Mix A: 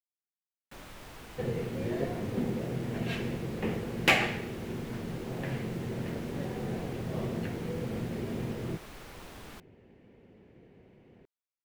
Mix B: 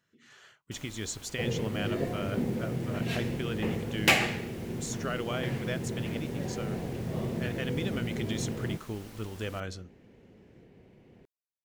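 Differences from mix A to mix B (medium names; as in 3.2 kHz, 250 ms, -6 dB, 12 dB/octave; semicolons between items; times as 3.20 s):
speech: unmuted; first sound -5.5 dB; master: add tone controls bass +2 dB, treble +7 dB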